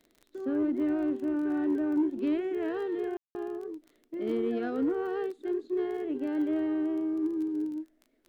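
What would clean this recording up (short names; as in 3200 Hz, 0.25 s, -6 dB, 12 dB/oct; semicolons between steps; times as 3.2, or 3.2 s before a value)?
de-click; room tone fill 3.17–3.35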